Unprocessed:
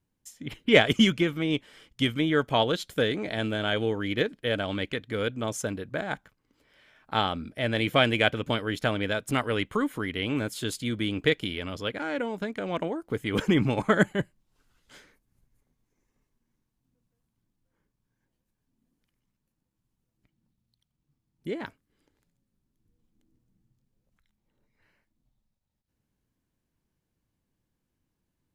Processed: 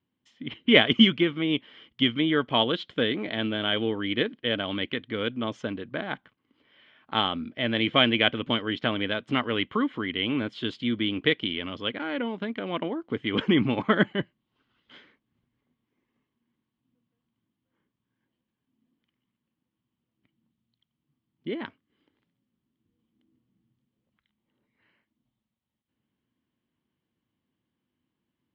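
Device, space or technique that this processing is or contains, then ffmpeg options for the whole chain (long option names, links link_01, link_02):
guitar cabinet: -af "highpass=99,equalizer=frequency=240:width_type=q:width=4:gain=7,equalizer=frequency=340:width_type=q:width=4:gain=4,equalizer=frequency=1100:width_type=q:width=4:gain=5,equalizer=frequency=2000:width_type=q:width=4:gain=4,equalizer=frequency=3100:width_type=q:width=4:gain=9,lowpass=frequency=4000:width=0.5412,lowpass=frequency=4000:width=1.3066,volume=-2.5dB"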